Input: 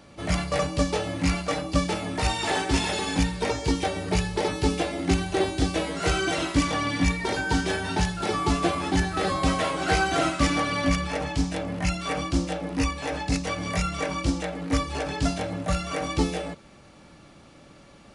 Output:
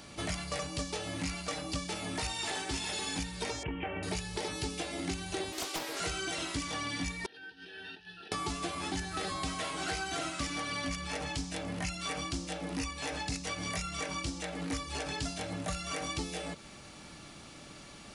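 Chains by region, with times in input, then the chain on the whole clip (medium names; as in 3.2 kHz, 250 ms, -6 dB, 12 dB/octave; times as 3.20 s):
3.63–4.03 s: steep low-pass 3 kHz 96 dB/octave + compression 2.5:1, threshold -24 dBFS
5.52–6.00 s: brick-wall FIR high-pass 290 Hz + loudspeaker Doppler distortion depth 0.82 ms
7.26–8.32 s: compressor with a negative ratio -30 dBFS + vowel filter e + static phaser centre 2.1 kHz, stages 6
whole clip: treble shelf 2.5 kHz +10 dB; band-stop 540 Hz, Q 12; compression, threshold -33 dBFS; trim -1 dB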